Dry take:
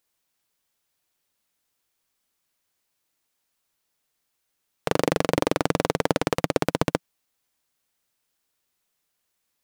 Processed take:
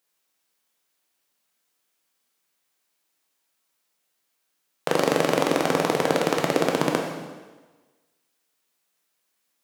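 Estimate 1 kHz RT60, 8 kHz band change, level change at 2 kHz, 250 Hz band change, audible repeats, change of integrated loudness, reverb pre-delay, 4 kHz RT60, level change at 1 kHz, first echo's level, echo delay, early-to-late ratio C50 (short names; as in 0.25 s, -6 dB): 1.3 s, +2.5 dB, +2.5 dB, +1.0 dB, none, +2.0 dB, 6 ms, 1.2 s, +2.5 dB, none, none, 4.5 dB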